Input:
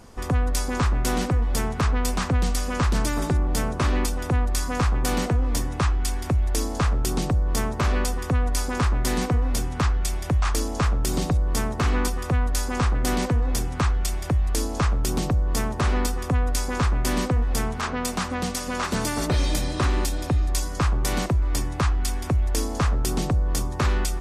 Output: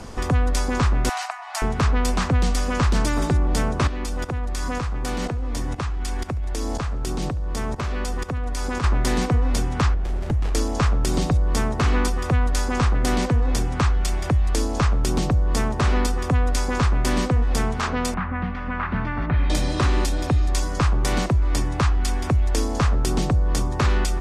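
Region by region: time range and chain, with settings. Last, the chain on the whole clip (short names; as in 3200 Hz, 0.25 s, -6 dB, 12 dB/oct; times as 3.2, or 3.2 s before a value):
1.09–1.62 brick-wall FIR high-pass 610 Hz + notch 3400 Hz, Q 11
3.87–8.84 level quantiser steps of 15 dB + feedback echo 71 ms, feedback 52%, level -22 dB
9.94–10.55 bell 3600 Hz -11 dB 1.4 oct + compressor 2:1, threshold -24 dBFS + running maximum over 33 samples
18.14–19.5 bell 460 Hz -12.5 dB 1.4 oct + upward compressor, threshold -28 dBFS + LPF 2000 Hz 24 dB/oct
whole clip: Bessel low-pass 8100 Hz, order 2; three-band squash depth 40%; gain +2.5 dB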